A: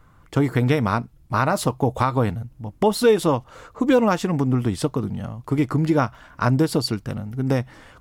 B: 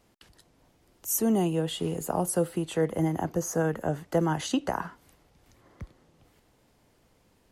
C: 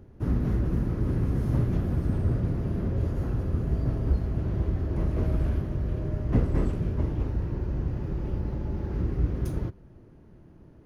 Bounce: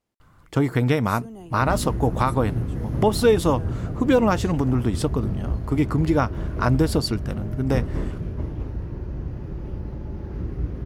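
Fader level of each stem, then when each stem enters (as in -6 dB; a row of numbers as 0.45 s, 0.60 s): -1.0 dB, -16.0 dB, -1.5 dB; 0.20 s, 0.00 s, 1.40 s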